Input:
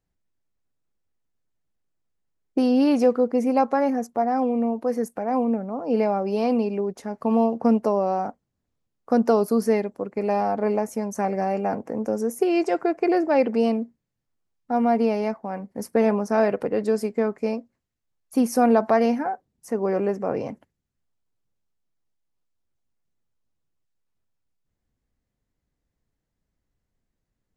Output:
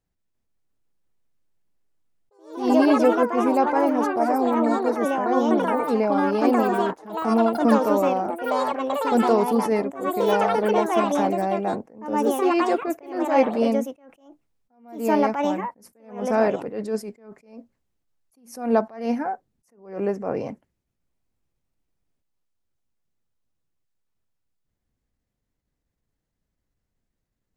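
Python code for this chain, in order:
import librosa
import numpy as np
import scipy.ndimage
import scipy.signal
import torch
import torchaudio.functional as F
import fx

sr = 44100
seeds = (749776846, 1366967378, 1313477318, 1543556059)

y = fx.echo_pitch(x, sr, ms=345, semitones=4, count=3, db_per_echo=-3.0)
y = fx.attack_slew(y, sr, db_per_s=120.0)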